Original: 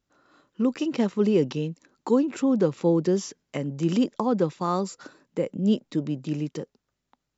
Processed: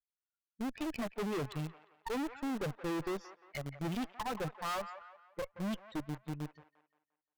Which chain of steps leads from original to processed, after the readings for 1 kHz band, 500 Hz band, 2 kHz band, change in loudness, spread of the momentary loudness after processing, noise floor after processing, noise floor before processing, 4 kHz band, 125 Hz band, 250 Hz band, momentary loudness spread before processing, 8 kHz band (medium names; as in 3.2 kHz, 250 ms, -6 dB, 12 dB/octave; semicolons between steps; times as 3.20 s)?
-7.5 dB, -15.5 dB, -2.0 dB, -13.5 dB, 8 LU, under -85 dBFS, -82 dBFS, -7.5 dB, -12.0 dB, -15.0 dB, 12 LU, no reading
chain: expander on every frequency bin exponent 3; low-pass 3.7 kHz 24 dB/octave; bass shelf 110 Hz -4 dB; wow and flutter 22 cents; in parallel at -11.5 dB: companded quantiser 2-bit; on the sum: valve stage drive 36 dB, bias 0.75; on a send: feedback echo behind a band-pass 175 ms, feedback 38%, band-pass 1.2 kHz, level -10 dB; on the sum: trim +2 dB